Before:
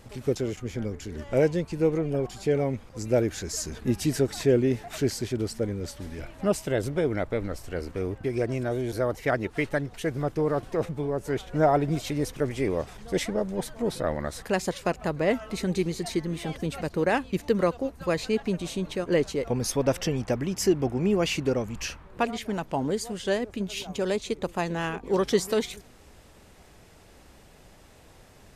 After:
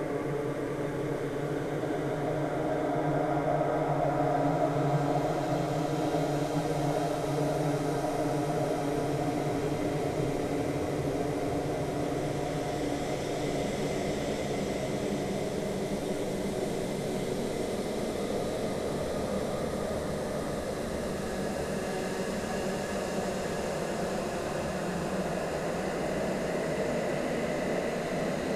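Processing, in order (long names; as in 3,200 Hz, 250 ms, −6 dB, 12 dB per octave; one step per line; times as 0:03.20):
feedback echo with a long and a short gap by turns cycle 764 ms, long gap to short 1.5 to 1, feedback 55%, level −4 dB
extreme stretch with random phases 6.5×, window 1.00 s, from 0:11.07
level −6 dB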